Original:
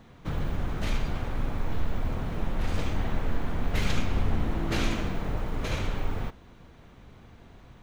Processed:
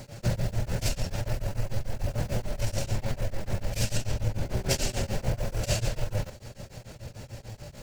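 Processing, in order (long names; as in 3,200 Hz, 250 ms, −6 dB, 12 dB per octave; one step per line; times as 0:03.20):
downward compressor 4 to 1, threshold −33 dBFS, peak gain reduction 13 dB
thirty-one-band graphic EQ 100 Hz +11 dB, 250 Hz −8 dB, 500 Hz +10 dB, 1,000 Hz −9 dB, 3,150 Hz −5 dB, 5,000 Hz +4 dB
pitch shifter +2.5 semitones
bass and treble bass 0 dB, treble +14 dB
tremolo along a rectified sine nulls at 6.8 Hz
level +8.5 dB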